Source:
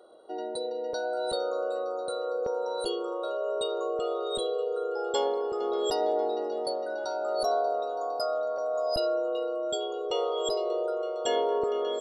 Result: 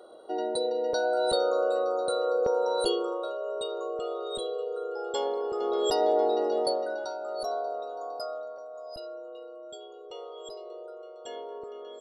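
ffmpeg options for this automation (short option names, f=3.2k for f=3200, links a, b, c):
-af "volume=12.5dB,afade=t=out:st=2.88:d=0.47:silence=0.421697,afade=t=in:st=5.16:d=1.42:silence=0.398107,afade=t=out:st=6.58:d=0.6:silence=0.316228,afade=t=out:st=8.18:d=0.5:silence=0.398107"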